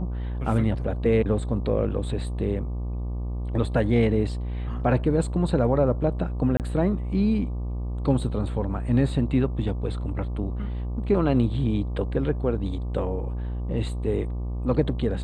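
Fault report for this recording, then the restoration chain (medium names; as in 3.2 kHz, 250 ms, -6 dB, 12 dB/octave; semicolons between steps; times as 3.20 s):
buzz 60 Hz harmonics 20 -29 dBFS
6.57–6.60 s: dropout 28 ms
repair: de-hum 60 Hz, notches 20; interpolate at 6.57 s, 28 ms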